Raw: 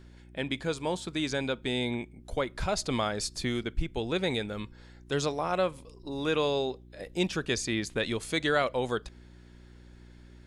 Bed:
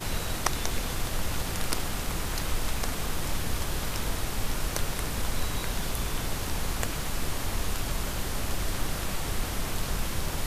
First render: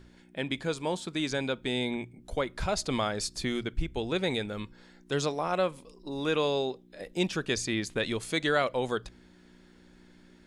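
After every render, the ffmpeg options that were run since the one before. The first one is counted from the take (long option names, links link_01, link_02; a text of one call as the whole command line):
ffmpeg -i in.wav -af "bandreject=frequency=60:width_type=h:width=4,bandreject=frequency=120:width_type=h:width=4" out.wav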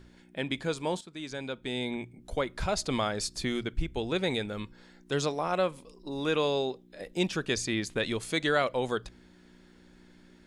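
ffmpeg -i in.wav -filter_complex "[0:a]asplit=2[link_01][link_02];[link_01]atrim=end=1.01,asetpts=PTS-STARTPTS,afade=type=out:start_time=1.006:duration=0.004:curve=hsin:silence=0.223872[link_03];[link_02]atrim=start=1.01,asetpts=PTS-STARTPTS,afade=type=in:duration=1.19:silence=0.223872[link_04];[link_03][link_04]concat=n=2:v=0:a=1" out.wav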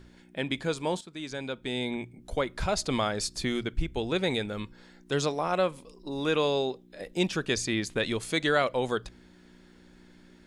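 ffmpeg -i in.wav -af "volume=1.5dB" out.wav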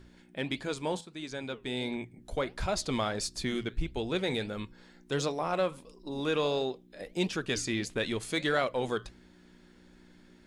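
ffmpeg -i in.wav -filter_complex "[0:a]flanger=delay=3:depth=6.1:regen=-80:speed=1.5:shape=sinusoidal,asplit=2[link_01][link_02];[link_02]asoftclip=type=hard:threshold=-31dB,volume=-11.5dB[link_03];[link_01][link_03]amix=inputs=2:normalize=0" out.wav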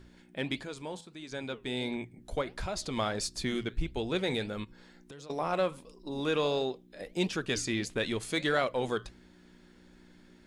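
ffmpeg -i in.wav -filter_complex "[0:a]asettb=1/sr,asplit=3[link_01][link_02][link_03];[link_01]atrim=end=0.634[link_04];[link_02]atrim=start=0.63:end=1.32,asetpts=PTS-STARTPTS,afade=type=in:duration=0.004:curve=qsin,afade=type=out:start_time=0.686:duration=0.004:curve=qsin,acompressor=threshold=-48dB:ratio=1.5:attack=3.2:release=140:knee=1:detection=peak[link_05];[link_03]atrim=start=1.316[link_06];[link_04][link_05]acrossfade=duration=0.004:curve1=hsin:curve2=qsin[link_07];[link_07][link_06]acrossfade=duration=0.004:curve1=qsin:curve2=hsin,asplit=3[link_08][link_09][link_10];[link_08]afade=type=out:start_time=2.41:duration=0.02[link_11];[link_09]acompressor=threshold=-32dB:ratio=3:attack=3.2:release=140:knee=1:detection=peak,afade=type=in:start_time=2.41:duration=0.02,afade=type=out:start_time=2.96:duration=0.02[link_12];[link_10]afade=type=in:start_time=2.96:duration=0.02[link_13];[link_11][link_12][link_13]amix=inputs=3:normalize=0,asettb=1/sr,asplit=3[link_14][link_15][link_16];[link_14]atrim=end=4.644[link_17];[link_15]atrim=start=4.64:end=5.3,asetpts=PTS-STARTPTS,afade=type=in:duration=0.004:curve=qsin,afade=type=out:start_time=0.656:duration=0.004:curve=qsin,acompressor=threshold=-44dB:ratio=20:attack=3.2:release=140:knee=1:detection=peak[link_18];[link_16]atrim=start=5.296[link_19];[link_17][link_18]acrossfade=duration=0.004:curve1=hsin:curve2=qsin[link_20];[link_20][link_19]acrossfade=duration=0.004:curve1=qsin:curve2=hsin" out.wav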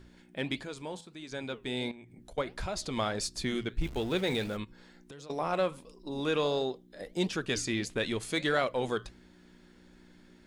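ffmpeg -i in.wav -filter_complex "[0:a]asettb=1/sr,asplit=3[link_01][link_02][link_03];[link_01]atrim=end=1.914[link_04];[link_02]atrim=start=1.91:end=2.38,asetpts=PTS-STARTPTS,afade=type=in:duration=0.004:curve=qsin,afade=type=out:start_time=0.466:duration=0.004:curve=qsin,acompressor=threshold=-46dB:ratio=8:attack=3.2:release=140:knee=1:detection=peak[link_05];[link_03]atrim=start=2.376[link_06];[link_04][link_05]acrossfade=duration=0.004:curve1=hsin:curve2=qsin[link_07];[link_07][link_06]acrossfade=duration=0.004:curve1=qsin:curve2=hsin,asettb=1/sr,asplit=3[link_08][link_09][link_10];[link_08]atrim=end=3.804[link_11];[link_09]atrim=start=3.8:end=4.57,asetpts=PTS-STARTPTS,afade=type=in:duration=0.004:curve=qsin,afade=type=out:start_time=0.766:duration=0.004:curve=qsin,aeval=exprs='val(0)+0.5*0.00794*sgn(val(0))':channel_layout=same[link_12];[link_10]atrim=start=4.566[link_13];[link_11][link_12]acrossfade=duration=0.004:curve1=hsin:curve2=qsin[link_14];[link_14][link_13]acrossfade=duration=0.004:curve1=qsin:curve2=hsin,asettb=1/sr,asplit=3[link_15][link_16][link_17];[link_15]atrim=end=6.434[link_18];[link_16]atrim=start=6.43:end=7.3,asetpts=PTS-STARTPTS,afade=type=in:duration=0.004:curve=qsin,afade=type=out:start_time=0.866:duration=0.004:curve=qsin,equalizer=frequency=2500:width=6.9:gain=-10[link_19];[link_17]atrim=start=7.296[link_20];[link_18][link_19]acrossfade=duration=0.004:curve1=hsin:curve2=qsin[link_21];[link_21][link_20]acrossfade=duration=0.004:curve1=qsin:curve2=hsin" out.wav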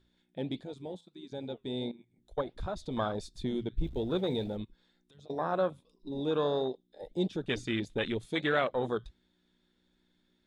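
ffmpeg -i in.wav -af "afwtdn=0.02,equalizer=frequency=3600:width_type=o:width=0.26:gain=13.5" out.wav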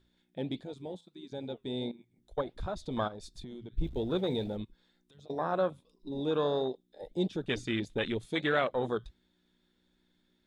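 ffmpeg -i in.wav -filter_complex "[0:a]asplit=3[link_01][link_02][link_03];[link_01]afade=type=out:start_time=3.07:duration=0.02[link_04];[link_02]acompressor=threshold=-40dB:ratio=16:attack=3.2:release=140:knee=1:detection=peak,afade=type=in:start_time=3.07:duration=0.02,afade=type=out:start_time=3.76:duration=0.02[link_05];[link_03]afade=type=in:start_time=3.76:duration=0.02[link_06];[link_04][link_05][link_06]amix=inputs=3:normalize=0" out.wav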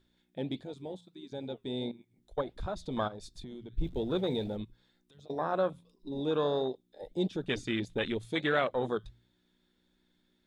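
ffmpeg -i in.wav -af "bandreject=frequency=58.1:width_type=h:width=4,bandreject=frequency=116.2:width_type=h:width=4,bandreject=frequency=174.3:width_type=h:width=4" out.wav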